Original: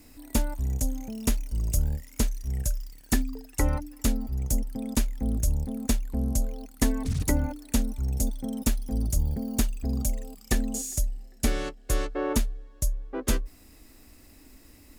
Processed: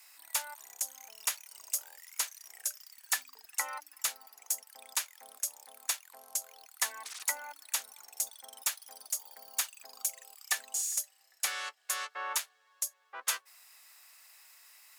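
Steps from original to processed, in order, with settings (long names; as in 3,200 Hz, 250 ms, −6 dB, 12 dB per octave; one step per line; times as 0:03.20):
high-pass filter 930 Hz 24 dB per octave
level +1 dB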